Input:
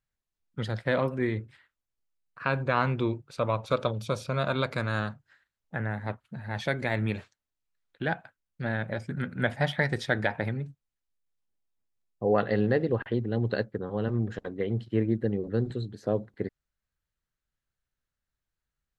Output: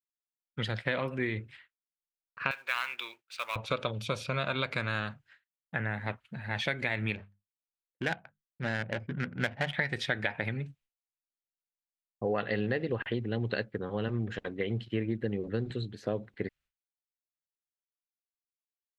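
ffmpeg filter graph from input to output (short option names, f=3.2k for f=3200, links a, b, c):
-filter_complex "[0:a]asettb=1/sr,asplit=3[a][b][c];[a]atrim=end=2.514[d];[b]atrim=start=2.51:end=3.56,asetpts=PTS-STARTPTS,afade=t=in:d=0.004:c=qsin,afade=t=out:st=1.046:d=0.004:c=qsin,highpass=1.4k,acrusher=bits=3:mode=log:mix=0:aa=0.000001[e];[c]atrim=start=3.556[f];[d][e]acrossfade=d=0.004:c1=hsin:c2=qsin[g];[g][f]acrossfade=d=0.004:c1=qsin:c2=hsin,asettb=1/sr,asplit=3[h][i][j];[h]atrim=end=7.154[k];[i]atrim=start=7.15:end=9.74,asetpts=PTS-STARTPTS,afade=t=in:d=0.004:c=qsin,afade=t=out:st=2.586:d=0.004:c=qsin,bandreject=f=50:t=h:w=6,bandreject=f=100:t=h:w=6,bandreject=f=150:t=h:w=6,bandreject=f=200:t=h:w=6,adynamicsmooth=sensitivity=4:basefreq=740[l];[j]atrim=start=9.736[m];[k][l]acrossfade=d=0.004:c1=hsin:c2=qsin[n];[n][m]acrossfade=d=0.004:c1=qsin:c2=hsin,agate=range=-33dB:threshold=-54dB:ratio=3:detection=peak,equalizer=f=2.6k:w=1.1:g=11.5,acompressor=threshold=-25dB:ratio=4,volume=-2dB"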